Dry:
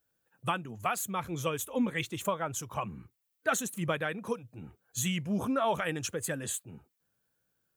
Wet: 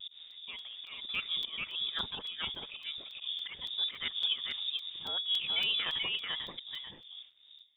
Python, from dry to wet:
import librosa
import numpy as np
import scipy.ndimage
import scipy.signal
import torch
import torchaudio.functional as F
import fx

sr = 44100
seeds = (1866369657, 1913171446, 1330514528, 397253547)

p1 = fx.dmg_wind(x, sr, seeds[0], corner_hz=190.0, level_db=-42.0)
p2 = fx.dynamic_eq(p1, sr, hz=1900.0, q=0.91, threshold_db=-47.0, ratio=4.0, max_db=-4)
p3 = fx.auto_swell(p2, sr, attack_ms=218.0)
p4 = fx.quant_companded(p3, sr, bits=4)
p5 = p3 + (p4 * librosa.db_to_amplitude(-11.0))
p6 = fx.harmonic_tremolo(p5, sr, hz=2.1, depth_pct=50, crossover_hz=500.0)
p7 = fx.freq_invert(p6, sr, carrier_hz=3600)
p8 = p7 + 10.0 ** (-3.5 / 20.0) * np.pad(p7, (int(438 * sr / 1000.0), 0))[:len(p7)]
p9 = fx.vibrato(p8, sr, rate_hz=1.1, depth_cents=32.0)
p10 = fx.buffer_crackle(p9, sr, first_s=0.31, period_s=0.28, block=128, kind='zero')
y = p10 * librosa.db_to_amplitude(-1.5)